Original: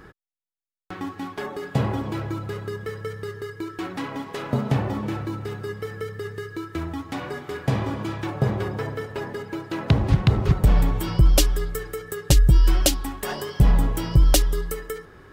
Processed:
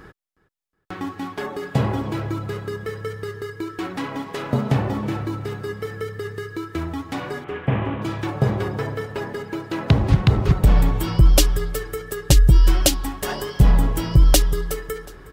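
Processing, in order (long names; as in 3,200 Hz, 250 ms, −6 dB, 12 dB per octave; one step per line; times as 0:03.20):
0:07.44–0:08.02: variable-slope delta modulation 16 kbit/s
repeating echo 366 ms, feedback 39%, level −20 dB
level +2.5 dB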